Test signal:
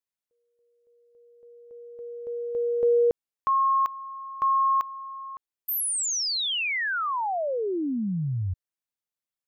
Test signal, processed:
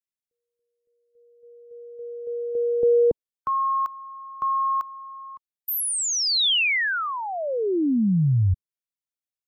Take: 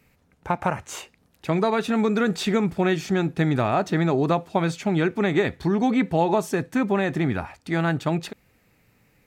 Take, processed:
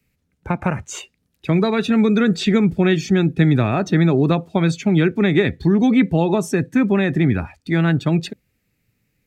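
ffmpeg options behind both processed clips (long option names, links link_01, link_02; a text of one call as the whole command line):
ffmpeg -i in.wav -filter_complex "[0:a]afftdn=noise_reduction=14:noise_floor=-39,equalizer=frequency=860:width=0.72:gain=-11.5,acrossover=split=210|1200|3500[link_01][link_02][link_03][link_04];[link_04]alimiter=level_in=8dB:limit=-24dB:level=0:latency=1,volume=-8dB[link_05];[link_01][link_02][link_03][link_05]amix=inputs=4:normalize=0,volume=9dB" out.wav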